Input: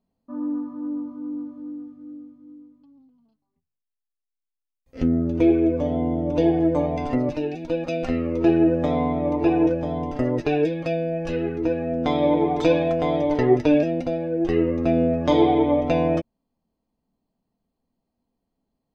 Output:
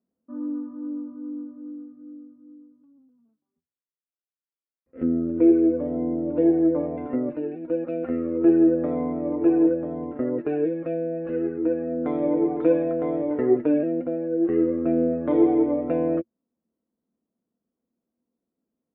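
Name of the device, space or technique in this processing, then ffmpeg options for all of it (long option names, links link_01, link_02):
bass cabinet: -af "highpass=88,equalizer=frequency=110:width_type=q:width=4:gain=-8,equalizer=frequency=230:width_type=q:width=4:gain=7,equalizer=frequency=340:width_type=q:width=4:gain=9,equalizer=frequency=500:width_type=q:width=4:gain=7,equalizer=frequency=840:width_type=q:width=4:gain=-5,equalizer=frequency=1400:width_type=q:width=4:gain=6,lowpass=frequency=2000:width=0.5412,lowpass=frequency=2000:width=1.3066,volume=-8.5dB"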